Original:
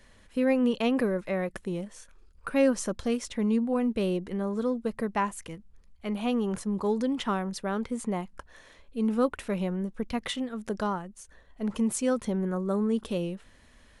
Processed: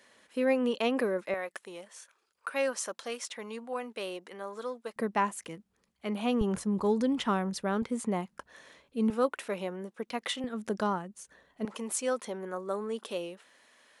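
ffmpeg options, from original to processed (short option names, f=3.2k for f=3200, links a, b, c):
-af "asetnsamples=n=441:p=0,asendcmd='1.34 highpass f 690;4.96 highpass f 200;6.41 highpass f 51;7.82 highpass f 140;9.1 highpass f 370;10.44 highpass f 150;11.65 highpass f 480',highpass=320"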